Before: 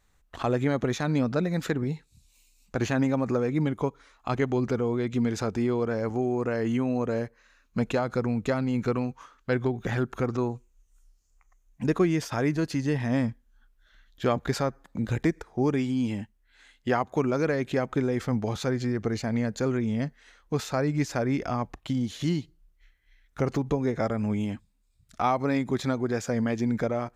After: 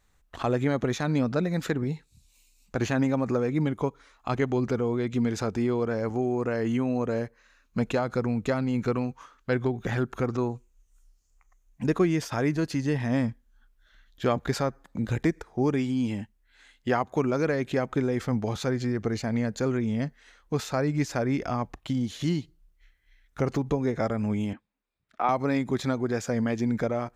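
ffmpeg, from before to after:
-filter_complex "[0:a]asettb=1/sr,asplit=3[s0][s1][s2];[s0]atrim=end=24.534[s3];[s1]atrim=start=24.53:end=25.29,asetpts=PTS-STARTPTS,afade=t=in:d=0.004:c=qsin,afade=t=out:st=0.756:d=0.004:c=qsin,acrossover=split=260 3000:gain=0.0794 1 0.0794[s4][s5][s6];[s4][s5][s6]amix=inputs=3:normalize=0[s7];[s2]atrim=start=25.286[s8];[s3][s7]acrossfade=d=0.004:c1=hsin:c2=qsin[s9];[s9][s8]acrossfade=d=0.004:c1=qsin:c2=hsin"

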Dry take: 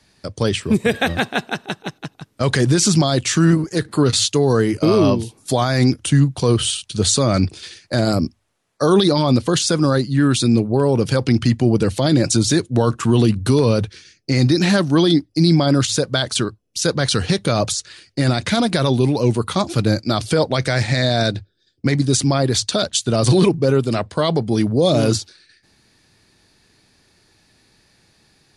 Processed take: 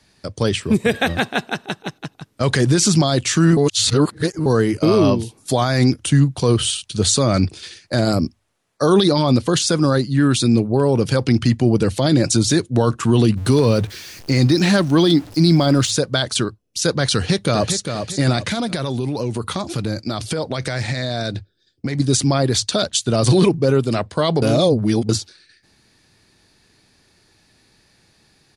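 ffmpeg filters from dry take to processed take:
-filter_complex "[0:a]asettb=1/sr,asplit=3[s0][s1][s2];[s0]atrim=end=13.374[s3];[s1]atrim=start=13.37:end=15.91,asetpts=PTS-STARTPTS,afade=t=in:d=0.004:c=qsin,afade=t=out:st=2.536:d=0.004:c=qsin,aeval=exprs='val(0)+0.5*0.0211*sgn(val(0))':c=same[s4];[s2]atrim=start=15.906[s5];[s3][s4]acrossfade=d=0.004:c1=hsin:c2=qsin[s6];[s6][s5]acrossfade=d=0.004:c1=qsin:c2=hsin,asplit=2[s7][s8];[s8]afade=t=in:st=17.13:d=0.01,afade=t=out:st=17.77:d=0.01,aecho=0:1:400|800|1200|1600:0.446684|0.156339|0.0547187|0.0191516[s9];[s7][s9]amix=inputs=2:normalize=0,asettb=1/sr,asplit=3[s10][s11][s12];[s10]atrim=end=18.454[s13];[s11]atrim=start=18.45:end=22,asetpts=PTS-STARTPTS,afade=t=in:d=0.004:c=qsin,afade=t=out:st=3.546:d=0.004:c=qsin,acompressor=threshold=0.126:ratio=6:attack=3.2:release=140:knee=1:detection=peak[s14];[s12]atrim=start=21.996[s15];[s13][s14]acrossfade=d=0.004:c1=hsin:c2=qsin[s16];[s16][s15]acrossfade=d=0.004:c1=qsin:c2=hsin,asplit=5[s17][s18][s19][s20][s21];[s17]atrim=end=3.572[s22];[s18]atrim=start=3.568:end=4.462,asetpts=PTS-STARTPTS,areverse[s23];[s19]atrim=start=4.458:end=24.422[s24];[s20]atrim=start=24.418:end=25.092,asetpts=PTS-STARTPTS,areverse[s25];[s21]atrim=start=25.088[s26];[s22][s23]acrossfade=d=0.004:c1=hsin:c2=hsin[s27];[s27][s24]acrossfade=d=0.004:c1=hsin:c2=hsin[s28];[s28][s25]acrossfade=d=0.004:c1=hsin:c2=hsin[s29];[s29][s26]acrossfade=d=0.004:c1=hsin:c2=hsin"

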